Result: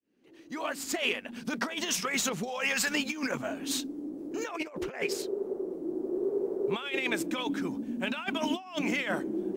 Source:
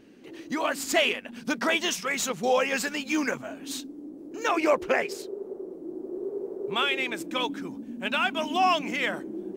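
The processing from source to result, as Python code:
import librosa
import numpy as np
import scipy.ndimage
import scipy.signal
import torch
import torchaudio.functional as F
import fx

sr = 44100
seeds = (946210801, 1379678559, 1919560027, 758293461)

y = fx.fade_in_head(x, sr, length_s=1.99)
y = fx.peak_eq(y, sr, hz=350.0, db=-11.5, octaves=1.3, at=(2.47, 2.89), fade=0.02)
y = fx.over_compress(y, sr, threshold_db=-30.0, ratio=-0.5)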